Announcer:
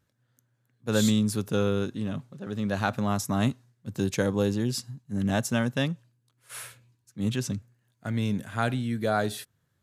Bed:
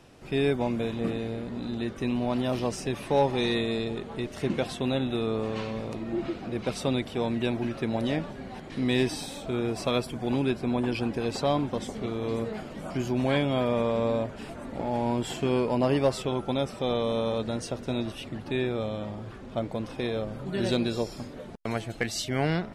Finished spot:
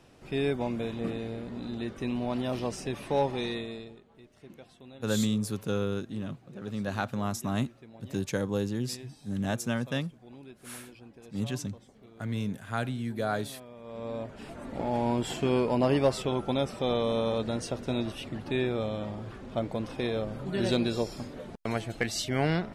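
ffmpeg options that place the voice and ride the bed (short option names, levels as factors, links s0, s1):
-filter_complex "[0:a]adelay=4150,volume=0.596[s0];[1:a]volume=7.94,afade=t=out:st=3.21:d=0.81:silence=0.11885,afade=t=in:st=13.81:d=1.02:silence=0.0841395[s1];[s0][s1]amix=inputs=2:normalize=0"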